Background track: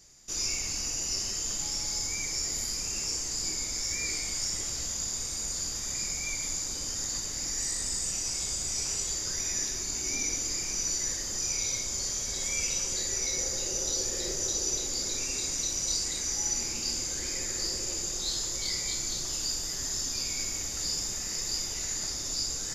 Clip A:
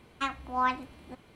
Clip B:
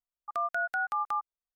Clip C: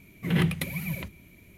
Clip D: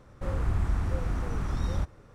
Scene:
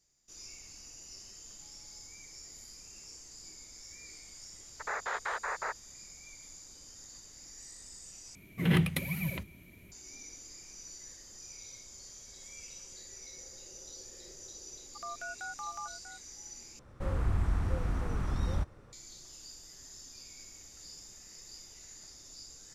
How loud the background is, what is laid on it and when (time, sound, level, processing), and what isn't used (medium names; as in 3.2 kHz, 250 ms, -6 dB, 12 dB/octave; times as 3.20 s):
background track -18 dB
4.51 s: add B -5 dB + noise-vocoded speech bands 6
8.35 s: replace with C -2 dB
14.67 s: add B -11 dB + echo from a far wall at 110 m, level -8 dB
16.79 s: replace with D -2.5 dB
not used: A